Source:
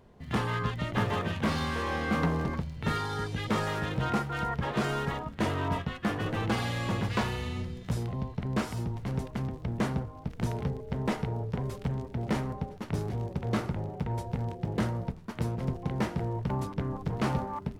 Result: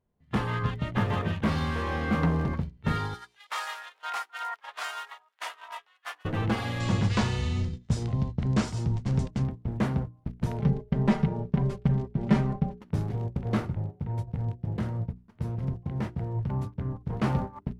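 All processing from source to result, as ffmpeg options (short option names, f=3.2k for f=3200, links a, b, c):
-filter_complex "[0:a]asettb=1/sr,asplit=3[a][b][c];[a]atrim=end=3.144[d];[b]atrim=start=3.14:end=6.25,asetpts=PTS-STARTPTS,afade=t=in:d=0.004:c=qsin,afade=t=out:st=3.106:d=0.004:c=qsin,highpass=f=810:w=0.5412,highpass=f=810:w=1.3066,highshelf=f=3.4k:g=8.5[e];[c]atrim=start=6.246[f];[d][e]acrossfade=d=0.004:c1=hsin:c2=qsin[g];[g][f]acrossfade=d=0.004:c1=qsin:c2=hsin,asettb=1/sr,asplit=3[h][i][j];[h]atrim=end=6.804[k];[i]atrim=start=6.8:end=9.44,asetpts=PTS-STARTPTS,afade=t=in:d=0.004:c=qsin,afade=t=out:st=2.636:d=0.004:c=qsin,lowpass=f=7.8k:w=0.5412,lowpass=f=7.8k:w=1.3066,bass=f=250:g=3,treble=f=4k:g=13[l];[j]atrim=start=9.436[m];[k][l]acrossfade=d=0.004:c1=hsin:c2=qsin[n];[n][m]acrossfade=d=0.004:c1=qsin:c2=hsin,asettb=1/sr,asplit=3[o][p][q];[o]atrim=end=10.594[r];[p]atrim=start=10.59:end=12.8,asetpts=PTS-STARTPTS,afade=t=in:d=0.004:c=qsin,afade=t=out:st=2.206:d=0.004:c=qsin,lowpass=8.5k,equalizer=f=150:t=o:w=0.76:g=4.5,aecho=1:1:5.1:0.73,atrim=end_sample=97461[s];[q]atrim=start=12.796[t];[r][s]acrossfade=d=0.004:c1=hsin:c2=qsin[u];[u][t]acrossfade=d=0.004:c1=qsin:c2=hsin,asettb=1/sr,asplit=3[v][w][x];[v]atrim=end=13.644[y];[w]atrim=start=13.64:end=17.1,asetpts=PTS-STARTPTS,afade=t=in:d=0.004:c=qsin,afade=t=out:st=3.456:d=0.004:c=qsin,equalizer=f=100:w=1.2:g=5.5,acompressor=threshold=-32dB:ratio=2:attack=3.2:release=140:knee=1:detection=peak[z];[x]atrim=start=17.096[aa];[y][z]acrossfade=d=0.004:c1=hsin:c2=qsin[ab];[ab][aa]acrossfade=d=0.004:c1=qsin:c2=hsin,agate=range=-23dB:threshold=-33dB:ratio=16:detection=peak,bass=f=250:g=5,treble=f=4k:g=-5,bandreject=f=60:t=h:w=6,bandreject=f=120:t=h:w=6,bandreject=f=180:t=h:w=6,bandreject=f=240:t=h:w=6,bandreject=f=300:t=h:w=6,bandreject=f=360:t=h:w=6,bandreject=f=420:t=h:w=6"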